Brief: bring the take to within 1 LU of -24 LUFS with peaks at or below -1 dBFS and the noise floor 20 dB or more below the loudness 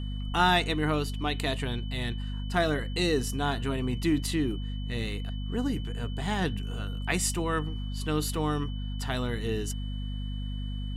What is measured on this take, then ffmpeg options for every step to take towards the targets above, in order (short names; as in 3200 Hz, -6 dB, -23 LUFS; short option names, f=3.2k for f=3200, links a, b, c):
hum 50 Hz; harmonics up to 250 Hz; hum level -31 dBFS; steady tone 3000 Hz; tone level -47 dBFS; loudness -30.0 LUFS; peak -10.5 dBFS; loudness target -24.0 LUFS
-> -af "bandreject=f=50:t=h:w=4,bandreject=f=100:t=h:w=4,bandreject=f=150:t=h:w=4,bandreject=f=200:t=h:w=4,bandreject=f=250:t=h:w=4"
-af "bandreject=f=3k:w=30"
-af "volume=6dB"